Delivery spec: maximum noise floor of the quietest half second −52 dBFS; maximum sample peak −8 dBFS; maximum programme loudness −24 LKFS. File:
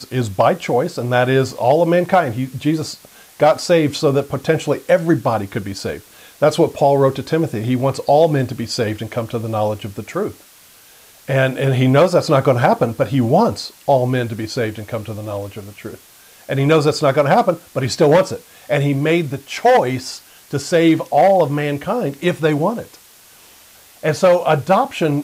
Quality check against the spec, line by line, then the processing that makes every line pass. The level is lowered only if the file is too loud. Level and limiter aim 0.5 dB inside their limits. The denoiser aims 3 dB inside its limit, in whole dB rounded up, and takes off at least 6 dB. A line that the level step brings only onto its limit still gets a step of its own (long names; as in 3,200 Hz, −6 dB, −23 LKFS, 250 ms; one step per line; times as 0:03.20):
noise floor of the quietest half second −46 dBFS: out of spec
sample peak −2.5 dBFS: out of spec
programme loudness −17.0 LKFS: out of spec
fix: level −7.5 dB